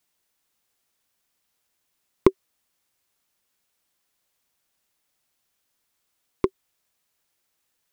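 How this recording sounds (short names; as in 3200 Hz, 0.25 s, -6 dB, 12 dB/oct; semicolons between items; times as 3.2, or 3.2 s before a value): noise floor -76 dBFS; spectral tilt -5.5 dB/oct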